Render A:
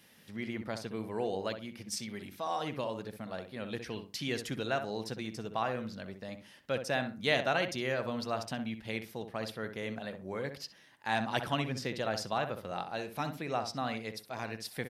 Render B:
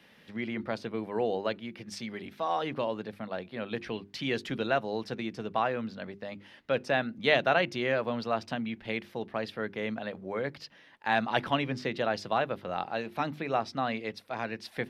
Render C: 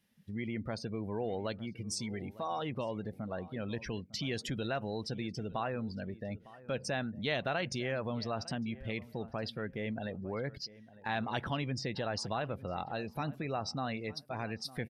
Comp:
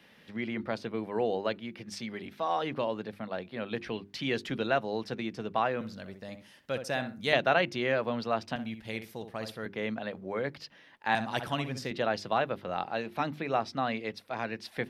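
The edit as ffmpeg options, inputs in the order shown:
-filter_complex "[0:a]asplit=3[s0][s1][s2];[1:a]asplit=4[s3][s4][s5][s6];[s3]atrim=end=5.812[s7];[s0]atrim=start=5.808:end=7.332[s8];[s4]atrim=start=7.328:end=8.562[s9];[s1]atrim=start=8.558:end=9.662[s10];[s5]atrim=start=9.658:end=11.152[s11];[s2]atrim=start=11.148:end=11.912[s12];[s6]atrim=start=11.908[s13];[s7][s8]acrossfade=d=0.004:c1=hsin:c2=hsin[s14];[s14][s9]acrossfade=d=0.004:c1=hsin:c2=hsin[s15];[s15][s10]acrossfade=d=0.004:c1=hsin:c2=hsin[s16];[s16][s11]acrossfade=d=0.004:c1=hsin:c2=hsin[s17];[s17][s12]acrossfade=d=0.004:c1=hsin:c2=hsin[s18];[s18][s13]acrossfade=d=0.004:c1=hsin:c2=hsin"

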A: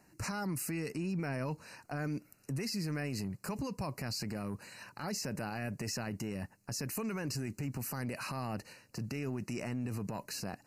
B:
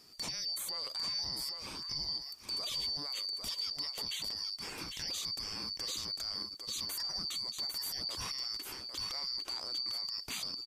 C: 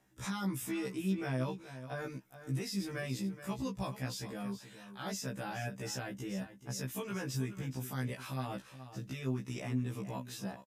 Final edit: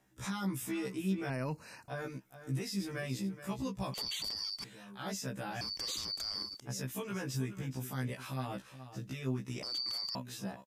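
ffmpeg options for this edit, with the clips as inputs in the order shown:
-filter_complex "[1:a]asplit=3[s0][s1][s2];[2:a]asplit=5[s3][s4][s5][s6][s7];[s3]atrim=end=1.302[s8];[0:a]atrim=start=1.298:end=1.882[s9];[s4]atrim=start=1.878:end=3.942[s10];[s0]atrim=start=3.938:end=4.642[s11];[s5]atrim=start=4.638:end=5.612[s12];[s1]atrim=start=5.608:end=6.602[s13];[s6]atrim=start=6.598:end=9.632[s14];[s2]atrim=start=9.628:end=10.152[s15];[s7]atrim=start=10.148[s16];[s8][s9]acrossfade=d=0.004:c1=hsin:c2=hsin[s17];[s17][s10]acrossfade=d=0.004:c1=hsin:c2=hsin[s18];[s18][s11]acrossfade=d=0.004:c1=hsin:c2=hsin[s19];[s19][s12]acrossfade=d=0.004:c1=hsin:c2=hsin[s20];[s20][s13]acrossfade=d=0.004:c1=hsin:c2=hsin[s21];[s21][s14]acrossfade=d=0.004:c1=hsin:c2=hsin[s22];[s22][s15]acrossfade=d=0.004:c1=hsin:c2=hsin[s23];[s23][s16]acrossfade=d=0.004:c1=hsin:c2=hsin"

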